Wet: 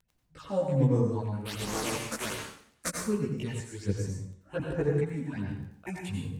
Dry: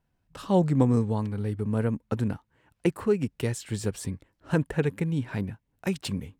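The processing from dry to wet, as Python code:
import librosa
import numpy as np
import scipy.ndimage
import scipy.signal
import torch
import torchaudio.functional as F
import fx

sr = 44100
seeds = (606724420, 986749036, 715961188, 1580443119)

y = fx.spec_flatten(x, sr, power=0.25, at=(1.45, 2.88), fade=0.02)
y = fx.phaser_stages(y, sr, stages=8, low_hz=110.0, high_hz=3600.0, hz=1.3, feedback_pct=25)
y = scipy.signal.sosfilt(scipy.signal.butter(2, 9000.0, 'lowpass', fs=sr, output='sos'), y)
y = fx.chorus_voices(y, sr, voices=2, hz=0.38, base_ms=17, depth_ms=3.9, mix_pct=55)
y = fx.dmg_crackle(y, sr, seeds[0], per_s=11.0, level_db=-47.0)
y = fx.rev_plate(y, sr, seeds[1], rt60_s=0.61, hf_ratio=0.9, predelay_ms=75, drr_db=1.0)
y = fx.band_widen(y, sr, depth_pct=40, at=(3.6, 4.6))
y = y * librosa.db_to_amplitude(-1.0)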